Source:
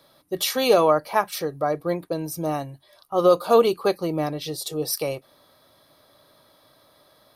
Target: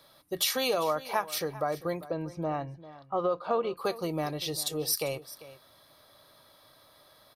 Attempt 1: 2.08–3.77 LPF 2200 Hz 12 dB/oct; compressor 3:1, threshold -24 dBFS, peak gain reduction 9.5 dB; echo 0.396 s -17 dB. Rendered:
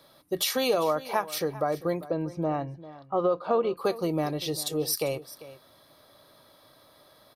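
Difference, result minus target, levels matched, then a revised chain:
250 Hz band +2.5 dB
2.08–3.77 LPF 2200 Hz 12 dB/oct; compressor 3:1, threshold -24 dBFS, peak gain reduction 9.5 dB; bell 290 Hz -5.5 dB 2.4 oct; echo 0.396 s -17 dB

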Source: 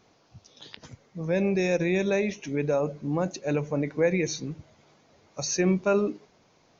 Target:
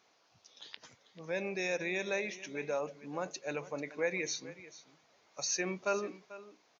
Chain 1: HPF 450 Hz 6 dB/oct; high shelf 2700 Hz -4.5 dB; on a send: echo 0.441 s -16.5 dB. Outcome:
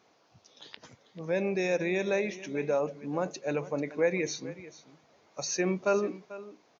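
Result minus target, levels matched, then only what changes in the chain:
2000 Hz band -4.0 dB
change: HPF 1500 Hz 6 dB/oct

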